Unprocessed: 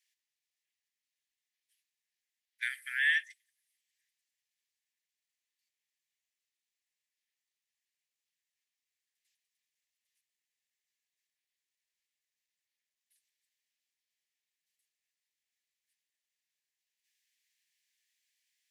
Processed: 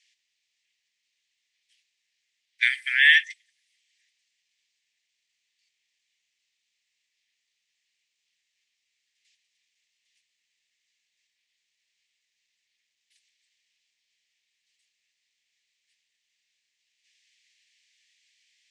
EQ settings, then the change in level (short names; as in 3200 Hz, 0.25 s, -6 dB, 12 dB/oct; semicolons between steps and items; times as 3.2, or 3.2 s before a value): air absorption 79 m; band shelf 4100 Hz +14 dB 2.5 oct; +3.0 dB